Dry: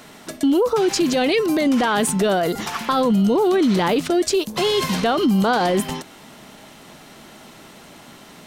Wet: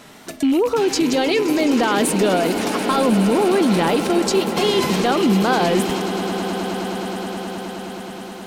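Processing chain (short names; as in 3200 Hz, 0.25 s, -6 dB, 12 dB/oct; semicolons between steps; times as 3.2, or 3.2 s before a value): rattling part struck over -33 dBFS, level -25 dBFS; wow and flutter 72 cents; on a send: swelling echo 0.105 s, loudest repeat 8, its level -16 dB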